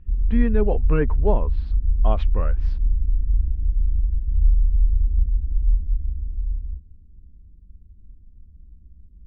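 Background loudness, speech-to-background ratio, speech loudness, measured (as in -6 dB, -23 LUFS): -24.5 LUFS, -2.0 dB, -26.5 LUFS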